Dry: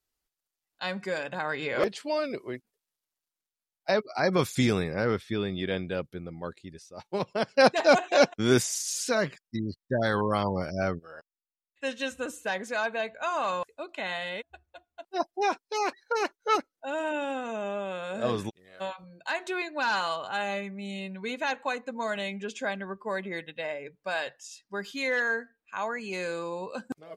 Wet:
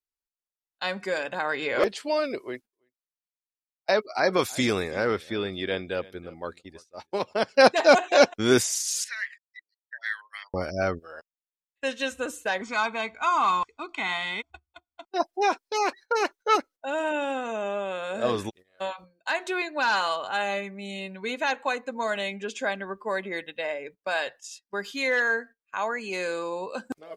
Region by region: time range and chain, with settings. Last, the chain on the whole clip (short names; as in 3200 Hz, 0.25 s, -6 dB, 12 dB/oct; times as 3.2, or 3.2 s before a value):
2.4–7.34 low shelf 220 Hz -5 dB + echo 0.329 s -21 dB
9.04–10.54 expander -44 dBFS + ladder high-pass 1800 Hz, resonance 85% + bell 10000 Hz +4.5 dB 0.26 oct
12.61–15.08 median filter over 5 samples + steep low-pass 8300 Hz + comb 0.9 ms, depth 95%
whole clip: gate -47 dBFS, range -17 dB; bell 150 Hz -10 dB 0.81 oct; gain +3.5 dB